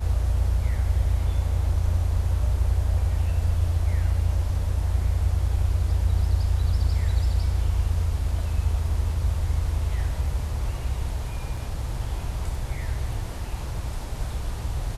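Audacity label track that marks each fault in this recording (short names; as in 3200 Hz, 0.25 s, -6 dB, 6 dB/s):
11.570000	11.570000	gap 3.6 ms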